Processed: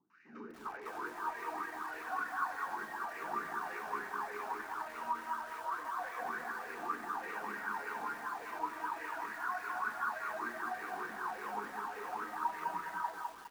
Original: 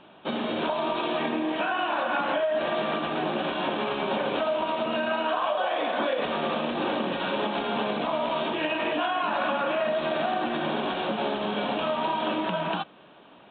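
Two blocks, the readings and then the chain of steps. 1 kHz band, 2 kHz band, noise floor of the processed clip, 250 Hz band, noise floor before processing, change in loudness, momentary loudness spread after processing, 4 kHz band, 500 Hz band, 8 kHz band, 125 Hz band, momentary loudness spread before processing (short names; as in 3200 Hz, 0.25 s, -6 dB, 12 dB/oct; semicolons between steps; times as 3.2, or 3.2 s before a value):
-9.0 dB, -8.0 dB, -50 dBFS, -21.0 dB, -52 dBFS, -12.0 dB, 4 LU, -24.5 dB, -21.5 dB, n/a, under -20 dB, 2 LU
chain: CVSD 32 kbps; compressor, threshold -29 dBFS, peak gain reduction 7 dB; limiter -26.5 dBFS, peak gain reduction 6.5 dB; wah 1.7 Hz 430–2000 Hz, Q 7.1; fixed phaser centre 1400 Hz, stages 4; three bands offset in time lows, highs, mids 0.1/0.4 s, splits 400/1800 Hz; lo-fi delay 0.205 s, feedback 35%, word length 11-bit, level -3 dB; gain +12 dB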